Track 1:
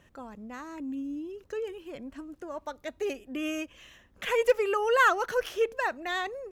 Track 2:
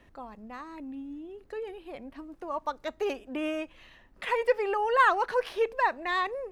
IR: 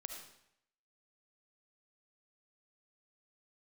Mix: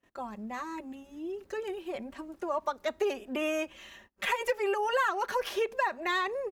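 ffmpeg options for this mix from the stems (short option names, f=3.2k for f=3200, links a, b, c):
-filter_complex "[0:a]highshelf=f=3.6k:g=5.5,volume=-3dB[a];[1:a]highpass=f=180:w=0.5412,highpass=f=180:w=1.3066,volume=-1,adelay=4.7,volume=3dB[b];[a][b]amix=inputs=2:normalize=0,agate=range=-26dB:threshold=-55dB:ratio=16:detection=peak,acompressor=threshold=-26dB:ratio=5"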